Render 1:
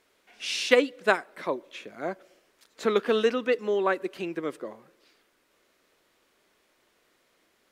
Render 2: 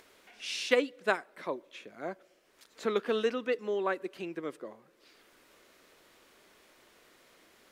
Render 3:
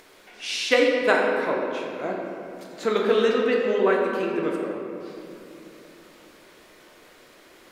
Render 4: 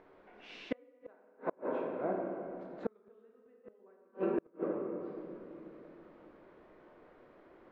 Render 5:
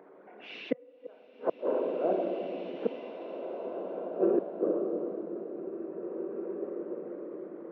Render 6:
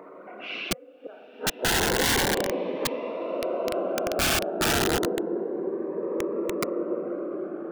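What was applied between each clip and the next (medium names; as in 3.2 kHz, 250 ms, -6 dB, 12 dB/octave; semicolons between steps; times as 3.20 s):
upward compressor, threshold -43 dBFS; trim -6 dB
reverberation RT60 2.9 s, pre-delay 7 ms, DRR -2 dB; trim +6 dB
low-pass 1.1 kHz 12 dB/octave; inverted gate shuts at -16 dBFS, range -36 dB; trim -5 dB
resonances exaggerated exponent 1.5; steep high-pass 150 Hz 48 dB/octave; swelling reverb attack 2270 ms, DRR 5 dB; trim +6.5 dB
peaking EQ 1.2 kHz +8 dB 1.6 oct; integer overflow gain 25 dB; Shepard-style phaser rising 0.3 Hz; trim +8.5 dB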